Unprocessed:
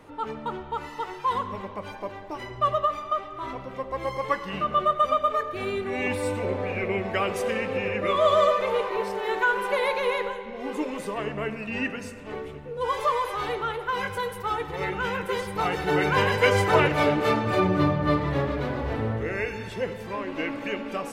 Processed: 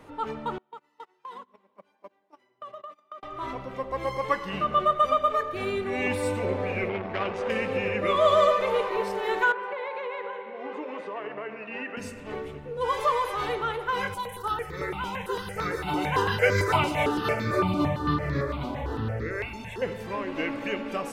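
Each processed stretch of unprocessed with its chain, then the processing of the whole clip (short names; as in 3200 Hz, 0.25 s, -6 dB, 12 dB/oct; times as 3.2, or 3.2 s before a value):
0.58–3.23 gate -30 dBFS, range -30 dB + HPF 180 Hz 24 dB/oct + compressor 5:1, threshold -40 dBFS
6.89–7.5 air absorption 150 m + core saturation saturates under 950 Hz
9.52–11.97 BPF 390–2300 Hz + compressor 5:1, threshold -30 dBFS
14.14–19.82 thin delay 0.147 s, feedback 66%, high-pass 2500 Hz, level -6 dB + step phaser 8.9 Hz 470–2900 Hz
whole clip: dry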